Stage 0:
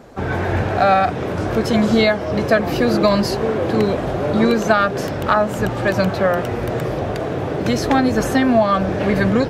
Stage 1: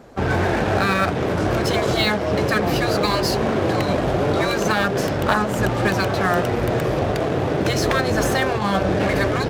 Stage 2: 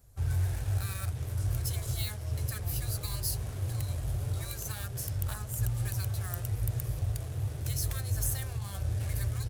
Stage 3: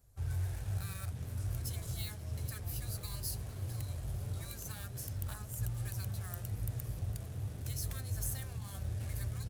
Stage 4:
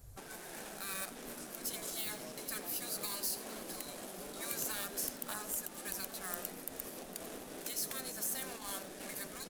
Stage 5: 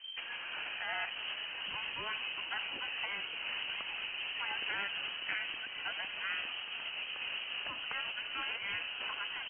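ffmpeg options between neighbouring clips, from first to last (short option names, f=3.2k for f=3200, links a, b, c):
-filter_complex "[0:a]afftfilt=real='re*lt(hypot(re,im),0.891)':imag='im*lt(hypot(re,im),0.891)':win_size=1024:overlap=0.75,asplit=2[a][b];[b]acrusher=bits=3:mix=0:aa=0.5,volume=-4.5dB[c];[a][c]amix=inputs=2:normalize=0,volume=-2.5dB"
-af "firequalizer=gain_entry='entry(110,0);entry(180,-27);entry(10000,6)':delay=0.05:min_phase=1,volume=-3dB"
-filter_complex "[0:a]asplit=5[a][b][c][d][e];[b]adelay=455,afreqshift=74,volume=-18dB[f];[c]adelay=910,afreqshift=148,volume=-25.1dB[g];[d]adelay=1365,afreqshift=222,volume=-32.3dB[h];[e]adelay=1820,afreqshift=296,volume=-39.4dB[i];[a][f][g][h][i]amix=inputs=5:normalize=0,volume=-6.5dB"
-filter_complex "[0:a]asplit=2[a][b];[b]adelay=87.46,volume=-17dB,highshelf=f=4k:g=-1.97[c];[a][c]amix=inputs=2:normalize=0,acompressor=threshold=-41dB:ratio=3,afftfilt=real='re*lt(hypot(re,im),0.0126)':imag='im*lt(hypot(re,im),0.0126)':win_size=1024:overlap=0.75,volume=11dB"
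-af "lowpass=f=2.7k:t=q:w=0.5098,lowpass=f=2.7k:t=q:w=0.6013,lowpass=f=2.7k:t=q:w=0.9,lowpass=f=2.7k:t=q:w=2.563,afreqshift=-3200,volume=8dB"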